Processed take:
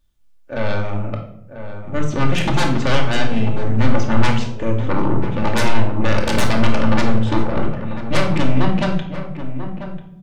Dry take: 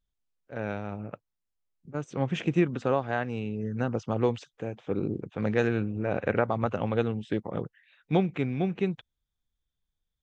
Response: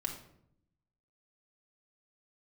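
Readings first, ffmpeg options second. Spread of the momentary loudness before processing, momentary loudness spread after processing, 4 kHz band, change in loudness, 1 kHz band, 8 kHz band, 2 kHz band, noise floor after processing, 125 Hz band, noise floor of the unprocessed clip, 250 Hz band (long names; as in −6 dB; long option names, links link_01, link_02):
12 LU, 11 LU, +18.5 dB, +9.0 dB, +11.5 dB, can't be measured, +12.0 dB, −43 dBFS, +12.0 dB, −84 dBFS, +9.5 dB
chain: -filter_complex "[0:a]aeval=exprs='0.299*(cos(1*acos(clip(val(0)/0.299,-1,1)))-cos(1*PI/2))+0.119*(cos(4*acos(clip(val(0)/0.299,-1,1)))-cos(4*PI/2))':channel_layout=same,aeval=exprs='0.335*sin(PI/2*5.62*val(0)/0.335)':channel_layout=same,asplit=2[link_01][link_02];[link_02]adelay=27,volume=-13dB[link_03];[link_01][link_03]amix=inputs=2:normalize=0,asplit=2[link_04][link_05];[link_05]adelay=991.3,volume=-10dB,highshelf=frequency=4000:gain=-22.3[link_06];[link_04][link_06]amix=inputs=2:normalize=0[link_07];[1:a]atrim=start_sample=2205[link_08];[link_07][link_08]afir=irnorm=-1:irlink=0,volume=-5.5dB"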